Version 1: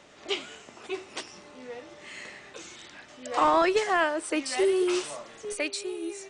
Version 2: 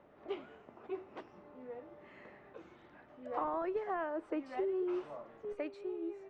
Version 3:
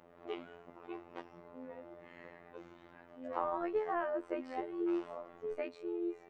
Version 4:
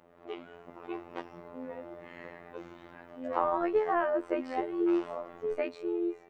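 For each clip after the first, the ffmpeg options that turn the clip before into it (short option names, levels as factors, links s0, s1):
-af "lowpass=1100,acompressor=threshold=0.0447:ratio=6,volume=0.531"
-af "afftfilt=real='hypot(re,im)*cos(PI*b)':imag='0':win_size=2048:overlap=0.75,volume=1.68"
-af "dynaudnorm=f=400:g=3:m=2.24"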